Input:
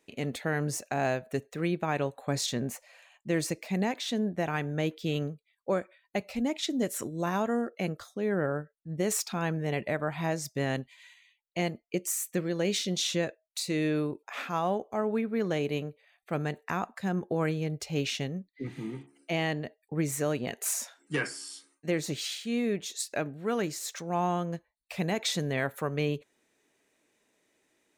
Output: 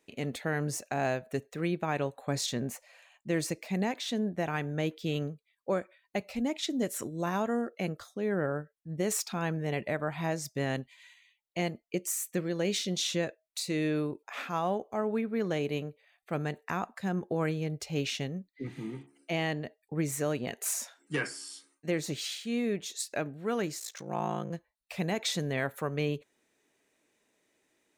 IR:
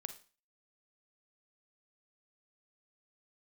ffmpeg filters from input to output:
-filter_complex "[0:a]asplit=3[link_01][link_02][link_03];[link_01]afade=type=out:start_time=23.79:duration=0.02[link_04];[link_02]aeval=exprs='val(0)*sin(2*PI*28*n/s)':channel_layout=same,afade=type=in:start_time=23.79:duration=0.02,afade=type=out:start_time=24.49:duration=0.02[link_05];[link_03]afade=type=in:start_time=24.49:duration=0.02[link_06];[link_04][link_05][link_06]amix=inputs=3:normalize=0,volume=-1.5dB"

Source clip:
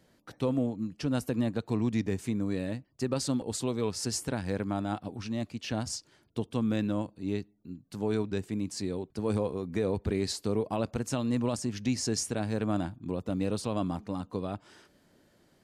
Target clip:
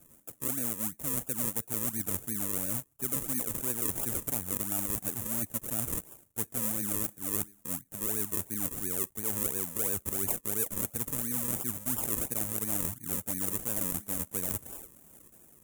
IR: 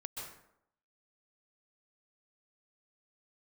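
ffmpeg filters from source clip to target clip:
-af "dynaudnorm=framelen=220:gausssize=11:maxgain=5dB,acrusher=samples=41:mix=1:aa=0.000001:lfo=1:lforange=41:lforate=2.9,areverse,acompressor=threshold=-37dB:ratio=6,areverse,aexciter=amount=15.1:drive=4.4:freq=6900"

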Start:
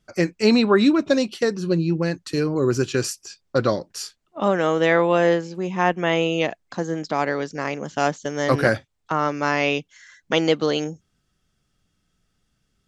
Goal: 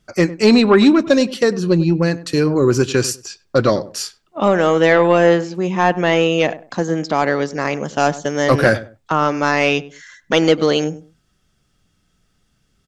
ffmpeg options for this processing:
ffmpeg -i in.wav -filter_complex "[0:a]acontrast=68,asplit=2[link_01][link_02];[link_02]adelay=99,lowpass=frequency=1100:poles=1,volume=-15.5dB,asplit=2[link_03][link_04];[link_04]adelay=99,lowpass=frequency=1100:poles=1,volume=0.24[link_05];[link_01][link_03][link_05]amix=inputs=3:normalize=0" out.wav

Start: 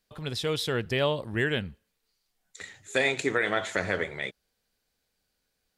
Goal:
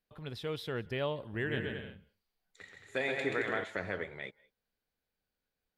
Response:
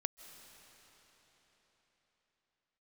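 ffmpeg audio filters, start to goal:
-filter_complex "[0:a]equalizer=frequency=7400:width=0.79:gain=-12.5,asettb=1/sr,asplit=3[link_01][link_02][link_03];[link_01]atrim=end=1.214[link_04];[link_02]atrim=start=1.21:end=3.64,asetpts=PTS-STARTPTS,afade=type=in:duration=0.004:curve=qsin,afade=type=out:start_time=2.426:duration=0.004:curve=qsin,aecho=1:1:130|221|284.7|329.3|360.5:0.631|0.398|0.251|0.158|0.1,atrim=end_sample=107163[link_05];[link_03]atrim=start=3.636[link_06];[link_04][link_05]acrossfade=duration=0.004:curve1=hsin:curve2=qsin[link_07];[link_07][link_06]acrossfade=duration=0.004:curve1=qsin:curve2=hsin[link_08];[1:a]atrim=start_sample=2205,afade=type=out:start_time=0.2:duration=0.01,atrim=end_sample=9261,asetrate=33957,aresample=44100[link_09];[link_08][link_09]afir=irnorm=-1:irlink=0,volume=-8dB"

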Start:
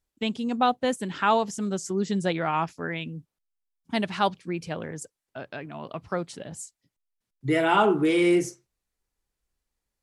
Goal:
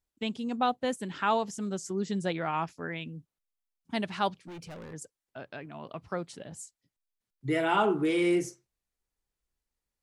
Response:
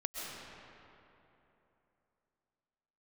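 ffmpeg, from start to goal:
-filter_complex "[0:a]asplit=3[link_01][link_02][link_03];[link_01]afade=type=out:start_time=4.44:duration=0.02[link_04];[link_02]asoftclip=type=hard:threshold=-36dB,afade=type=in:start_time=4.44:duration=0.02,afade=type=out:start_time=4.92:duration=0.02[link_05];[link_03]afade=type=in:start_time=4.92:duration=0.02[link_06];[link_04][link_05][link_06]amix=inputs=3:normalize=0,volume=-5dB"

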